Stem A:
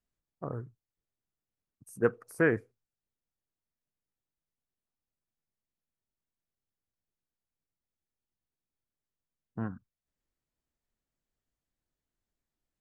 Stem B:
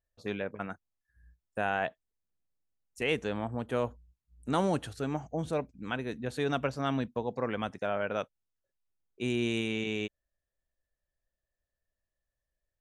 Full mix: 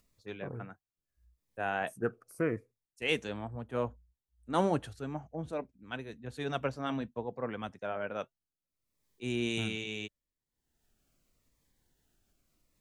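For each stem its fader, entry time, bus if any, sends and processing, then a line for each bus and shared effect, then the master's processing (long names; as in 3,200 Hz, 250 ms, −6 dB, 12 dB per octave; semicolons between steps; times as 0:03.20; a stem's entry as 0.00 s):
−4.0 dB, 0.00 s, no send, phaser whose notches keep moving one way falling 0.79 Hz
0.0 dB, 0.00 s, no send, flanger 0.79 Hz, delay 0.6 ms, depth 3.5 ms, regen −77%; multiband upward and downward expander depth 100%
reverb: not used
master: upward compression, threshold −57 dBFS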